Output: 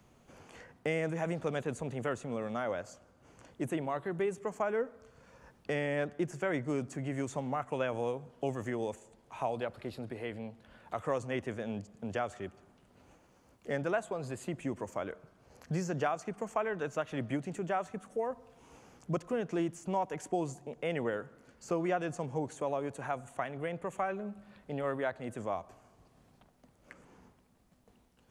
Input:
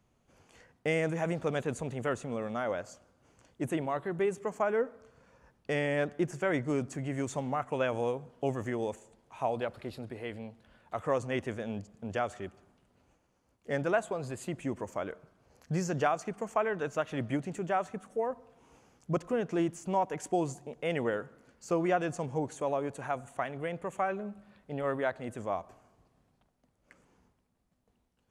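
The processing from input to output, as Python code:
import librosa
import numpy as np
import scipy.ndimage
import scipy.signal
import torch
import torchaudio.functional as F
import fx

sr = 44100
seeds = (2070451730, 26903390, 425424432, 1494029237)

y = fx.band_squash(x, sr, depth_pct=40)
y = y * 10.0 ** (-2.5 / 20.0)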